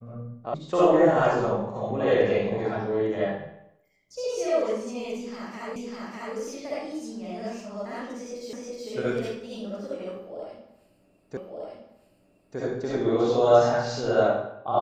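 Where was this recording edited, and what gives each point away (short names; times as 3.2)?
0.54 sound cut off
5.76 repeat of the last 0.6 s
8.53 repeat of the last 0.37 s
11.37 repeat of the last 1.21 s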